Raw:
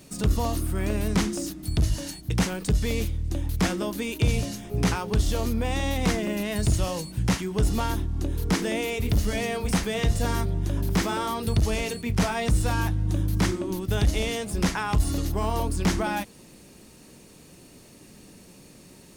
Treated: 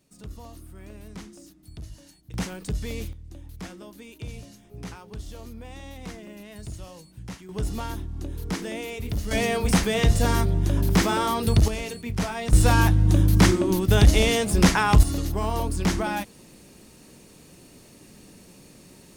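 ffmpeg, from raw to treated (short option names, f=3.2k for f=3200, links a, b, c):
-af "asetnsamples=n=441:p=0,asendcmd='2.34 volume volume -6dB;3.13 volume volume -14.5dB;7.49 volume volume -5.5dB;9.31 volume volume 4dB;11.68 volume volume -3.5dB;12.53 volume volume 7dB;15.03 volume volume 0dB',volume=-17dB"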